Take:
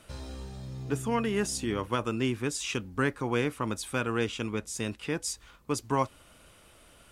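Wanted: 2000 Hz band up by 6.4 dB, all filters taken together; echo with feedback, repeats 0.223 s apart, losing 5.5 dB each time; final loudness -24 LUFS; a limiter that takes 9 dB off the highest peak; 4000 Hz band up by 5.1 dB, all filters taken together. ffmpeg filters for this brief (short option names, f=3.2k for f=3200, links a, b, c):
-af "equalizer=f=2k:t=o:g=7.5,equalizer=f=4k:t=o:g=4,alimiter=limit=-18.5dB:level=0:latency=1,aecho=1:1:223|446|669|892|1115|1338|1561:0.531|0.281|0.149|0.079|0.0419|0.0222|0.0118,volume=6.5dB"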